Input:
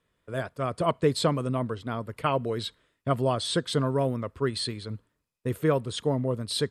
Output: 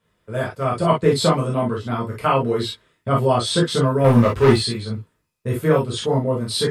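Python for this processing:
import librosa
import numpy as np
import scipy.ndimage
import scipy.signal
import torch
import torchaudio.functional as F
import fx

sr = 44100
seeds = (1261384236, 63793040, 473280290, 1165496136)

y = fx.leveller(x, sr, passes=3, at=(4.04, 4.56))
y = fx.rev_gated(y, sr, seeds[0], gate_ms=80, shape='flat', drr_db=-5.0)
y = F.gain(torch.from_numpy(y), 1.5).numpy()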